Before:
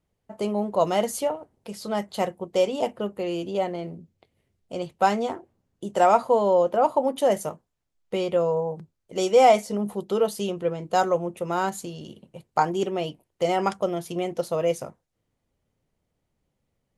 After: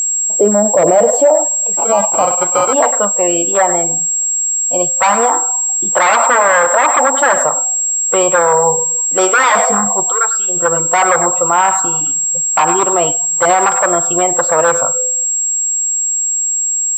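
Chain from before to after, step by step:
low-shelf EQ 180 Hz +7.5 dB
rectangular room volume 2,700 cubic metres, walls mixed, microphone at 0.4 metres
wave folding −18.5 dBFS
feedback echo with a high-pass in the loop 100 ms, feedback 24%, high-pass 510 Hz, level −13 dB
0:10.01–0:10.56: downward compressor 16 to 1, threshold −30 dBFS, peak gain reduction 9.5 dB
noise reduction from a noise print of the clip's start 18 dB
0:01.77–0:02.73: sample-rate reduction 1,800 Hz, jitter 0%
band-pass filter sweep 490 Hz → 1,100 Hz, 0:00.61–0:03.12
steady tone 7,600 Hz −39 dBFS
boost into a limiter +27 dB
level −1 dB

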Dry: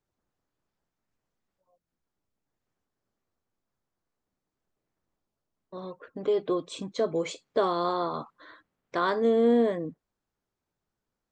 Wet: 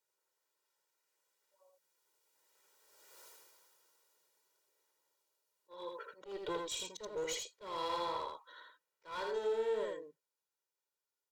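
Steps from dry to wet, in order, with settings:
source passing by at 0:03.23, 15 m/s, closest 1.6 metres
high-pass filter 490 Hz 12 dB per octave
high-shelf EQ 3,600 Hz +11 dB
comb filter 2.1 ms, depth 82%
in parallel at 0 dB: brickwall limiter −55.5 dBFS, peak gain reduction 11 dB
on the sum: asymmetric clip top −54.5 dBFS
volume swells 210 ms
on a send: single-tap delay 81 ms −3.5 dB
on the sum: level +17.5 dB

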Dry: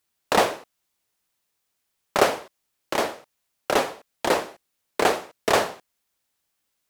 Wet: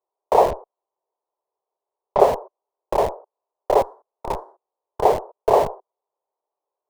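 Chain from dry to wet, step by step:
0:03.81–0:05.02: spectral envelope flattened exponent 0.1
elliptic band-pass filter 390–1,000 Hz, stop band 50 dB
in parallel at −4.5 dB: comparator with hysteresis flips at −28 dBFS
0:00.51–0:02.20: on the sum: high-frequency loss of the air 150 metres
level +5.5 dB

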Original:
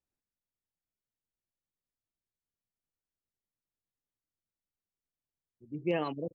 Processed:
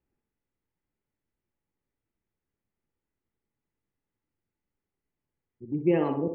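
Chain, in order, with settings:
low-pass filter 2,600 Hz 24 dB per octave
low shelf with overshoot 510 Hz +6 dB, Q 1.5
in parallel at 0 dB: downward compressor, threshold −41 dBFS, peak gain reduction 20 dB
on the sum: hollow resonant body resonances 860/2,000 Hz, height 7 dB
on a send: feedback echo with a band-pass in the loop 61 ms, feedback 55%, band-pass 710 Hz, level −4 dB

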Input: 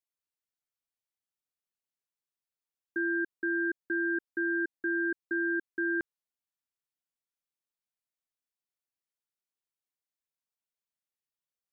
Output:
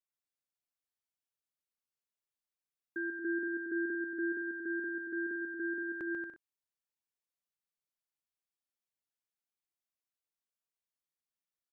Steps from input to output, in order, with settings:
bouncing-ball delay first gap 140 ms, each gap 0.65×, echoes 5
0:03.20–0:04.32: dynamic equaliser 320 Hz, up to +3 dB, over −38 dBFS, Q 0.78
level −6.5 dB

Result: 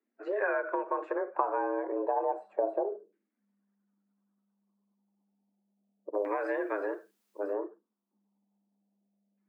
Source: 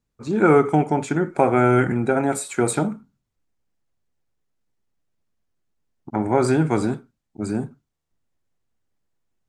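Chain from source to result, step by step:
spectral magnitudes quantised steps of 15 dB
downward compressor 10 to 1, threshold −22 dBFS, peak gain reduction 11.5 dB
auto-filter low-pass saw down 0.32 Hz 420–1,900 Hz
0:06.14–0:07.54: bit-depth reduction 12 bits, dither triangular
frequency shifter +200 Hz
level −6.5 dB

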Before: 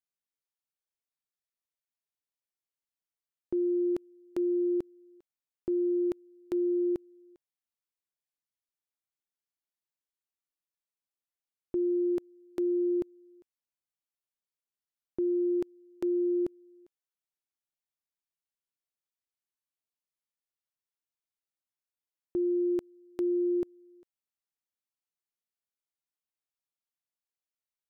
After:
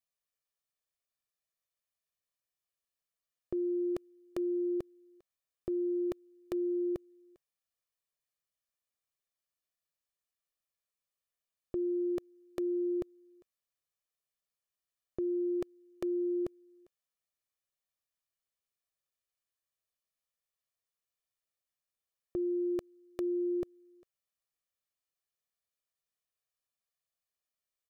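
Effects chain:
comb filter 1.7 ms, depth 58%

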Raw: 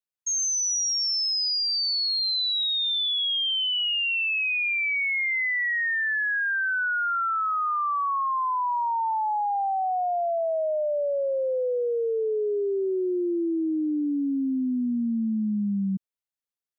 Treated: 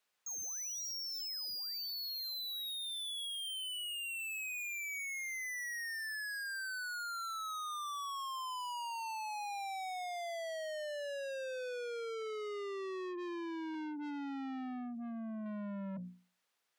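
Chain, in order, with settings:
mains-hum notches 60/120/180/240/300/360 Hz
mid-hump overdrive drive 16 dB, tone 2,700 Hz, clips at −21 dBFS
0:13.74–0:15.46: thirty-one-band graphic EQ 100 Hz −4 dB, 160 Hz −8 dB, 250 Hz −8 dB, 800 Hz +8 dB, 1,250 Hz −10 dB
soft clipping −39.5 dBFS, distortion −7 dB
brickwall limiter −48 dBFS, peak gain reduction 8.5 dB
level +7.5 dB

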